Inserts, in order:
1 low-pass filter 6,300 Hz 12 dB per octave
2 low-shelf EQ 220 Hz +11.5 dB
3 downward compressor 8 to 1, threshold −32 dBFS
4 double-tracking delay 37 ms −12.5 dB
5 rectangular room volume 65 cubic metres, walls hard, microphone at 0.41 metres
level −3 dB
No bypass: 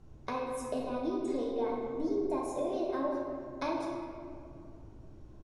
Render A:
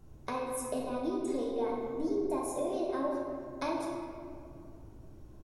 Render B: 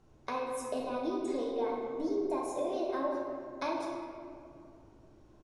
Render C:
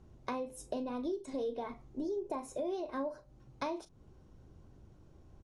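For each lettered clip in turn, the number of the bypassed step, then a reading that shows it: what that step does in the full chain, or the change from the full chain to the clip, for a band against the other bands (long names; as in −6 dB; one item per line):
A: 1, 8 kHz band +7.5 dB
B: 2, 125 Hz band −8.5 dB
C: 5, echo-to-direct ratio 2.0 dB to none audible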